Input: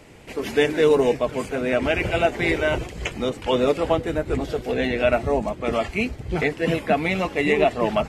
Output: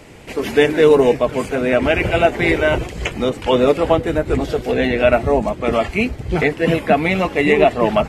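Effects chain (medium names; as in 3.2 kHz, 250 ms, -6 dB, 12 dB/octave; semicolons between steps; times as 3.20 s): dynamic bell 6 kHz, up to -4 dB, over -40 dBFS, Q 0.74; trim +6 dB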